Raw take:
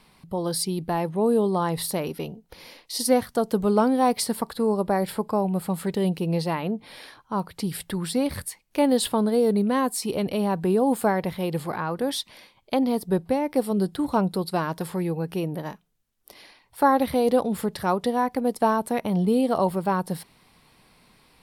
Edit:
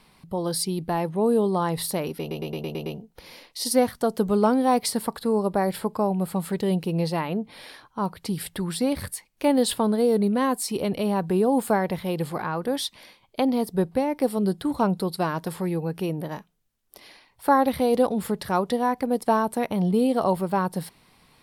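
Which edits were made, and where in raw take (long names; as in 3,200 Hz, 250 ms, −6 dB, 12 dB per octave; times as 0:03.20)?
0:02.20: stutter 0.11 s, 7 plays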